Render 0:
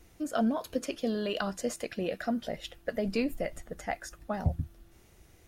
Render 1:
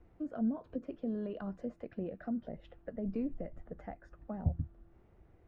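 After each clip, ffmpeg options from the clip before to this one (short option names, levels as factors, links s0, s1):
-filter_complex "[0:a]lowpass=1200,acrossover=split=340[s0][s1];[s1]acompressor=threshold=0.00794:ratio=6[s2];[s0][s2]amix=inputs=2:normalize=0,volume=0.708"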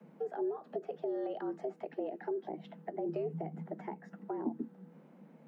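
-filter_complex "[0:a]afreqshift=150,acrossover=split=330|760[s0][s1][s2];[s0]acompressor=threshold=0.00631:ratio=4[s3];[s1]acompressor=threshold=0.00631:ratio=4[s4];[s2]acompressor=threshold=0.00224:ratio=4[s5];[s3][s4][s5]amix=inputs=3:normalize=0,volume=1.68"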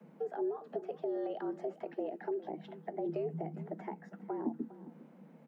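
-af "aecho=1:1:406:0.141"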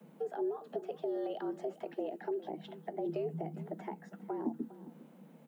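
-af "aexciter=amount=2.1:drive=5.1:freq=2900"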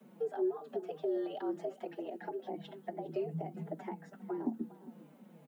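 -filter_complex "[0:a]asplit=2[s0][s1];[s1]adelay=4.7,afreqshift=-2.9[s2];[s0][s2]amix=inputs=2:normalize=1,volume=1.41"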